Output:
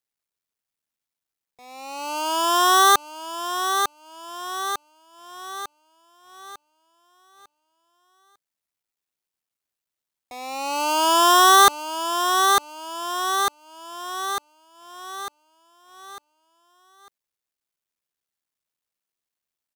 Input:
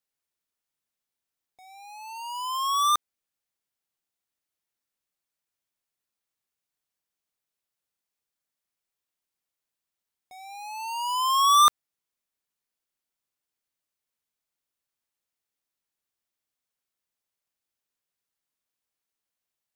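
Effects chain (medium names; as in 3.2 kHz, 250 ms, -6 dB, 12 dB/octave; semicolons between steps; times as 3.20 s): cycle switcher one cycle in 3, muted; feedback delay 900 ms, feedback 54%, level -10 dB; waveshaping leveller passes 2; trim +4.5 dB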